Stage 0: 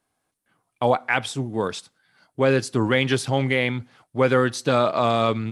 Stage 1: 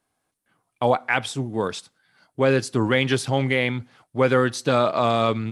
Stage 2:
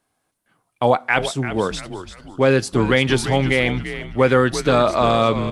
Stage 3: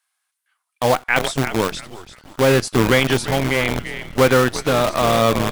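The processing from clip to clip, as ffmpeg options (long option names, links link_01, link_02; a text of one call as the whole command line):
ffmpeg -i in.wav -af anull out.wav
ffmpeg -i in.wav -filter_complex "[0:a]asplit=5[link_01][link_02][link_03][link_04][link_05];[link_02]adelay=341,afreqshift=-88,volume=-11dB[link_06];[link_03]adelay=682,afreqshift=-176,volume=-19.4dB[link_07];[link_04]adelay=1023,afreqshift=-264,volume=-27.8dB[link_08];[link_05]adelay=1364,afreqshift=-352,volume=-36.2dB[link_09];[link_01][link_06][link_07][link_08][link_09]amix=inputs=5:normalize=0,volume=3.5dB" out.wav
ffmpeg -i in.wav -filter_complex "[0:a]acrossover=split=1100[link_01][link_02];[link_01]acrusher=bits=4:dc=4:mix=0:aa=0.000001[link_03];[link_03][link_02]amix=inputs=2:normalize=0,tremolo=f=0.73:d=0.34,volume=1.5dB" out.wav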